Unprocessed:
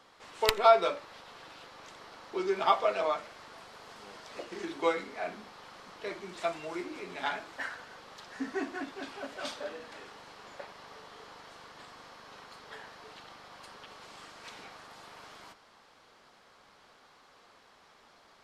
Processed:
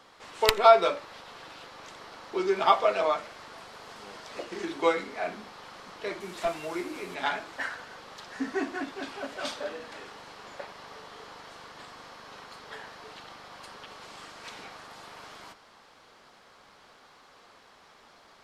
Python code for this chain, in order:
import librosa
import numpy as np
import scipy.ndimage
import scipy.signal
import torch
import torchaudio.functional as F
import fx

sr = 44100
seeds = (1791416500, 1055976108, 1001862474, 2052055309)

y = fx.delta_mod(x, sr, bps=64000, step_db=-48.5, at=(6.2, 7.15))
y = y * librosa.db_to_amplitude(4.0)